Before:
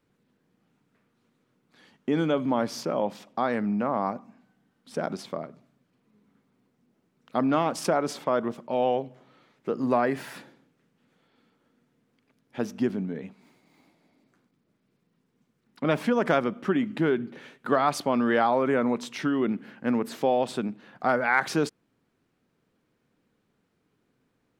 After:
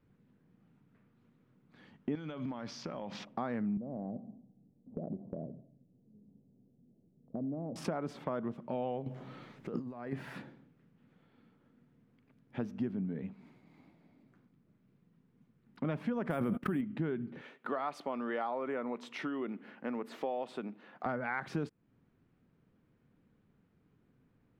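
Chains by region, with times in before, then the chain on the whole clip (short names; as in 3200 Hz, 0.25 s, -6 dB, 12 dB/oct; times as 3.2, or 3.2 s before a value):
2.15–3.25 EQ curve 410 Hz 0 dB, 6000 Hz +14 dB, 9400 Hz -3 dB + compressor 16:1, threshold -32 dBFS
3.77–7.76 steep low-pass 670 Hz + compressor 2.5:1, threshold -34 dBFS + feedback echo 87 ms, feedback 44%, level -19 dB
9.06–10.13 tone controls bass -1 dB, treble +7 dB + negative-ratio compressor -37 dBFS
16.3–16.81 gate -38 dBFS, range -46 dB + careless resampling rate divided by 4×, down none, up hold + fast leveller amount 100%
17.41–21.06 HPF 400 Hz + notch 1600 Hz, Q 17
whole clip: tone controls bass +10 dB, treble -13 dB; compressor 2.5:1, threshold -34 dBFS; gain -3 dB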